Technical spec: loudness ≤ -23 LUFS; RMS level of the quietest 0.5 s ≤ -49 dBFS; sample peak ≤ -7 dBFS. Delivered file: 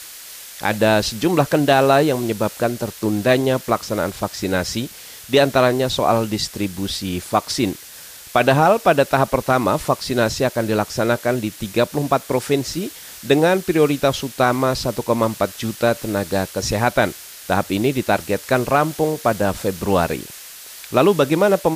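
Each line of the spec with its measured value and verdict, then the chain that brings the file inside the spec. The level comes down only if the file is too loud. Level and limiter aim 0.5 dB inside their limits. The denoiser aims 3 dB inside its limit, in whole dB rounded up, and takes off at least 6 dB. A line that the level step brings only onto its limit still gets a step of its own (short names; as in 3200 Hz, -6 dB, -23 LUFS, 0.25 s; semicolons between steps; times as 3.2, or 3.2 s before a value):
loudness -19.0 LUFS: fail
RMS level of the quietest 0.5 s -39 dBFS: fail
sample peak -3.5 dBFS: fail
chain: denoiser 9 dB, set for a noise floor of -39 dBFS; gain -4.5 dB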